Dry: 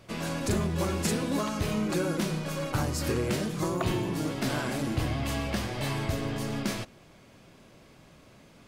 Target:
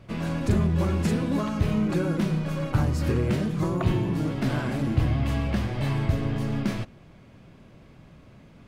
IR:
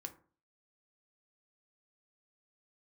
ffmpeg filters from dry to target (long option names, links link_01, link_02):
-af "bass=frequency=250:gain=8,treble=frequency=4000:gain=-9"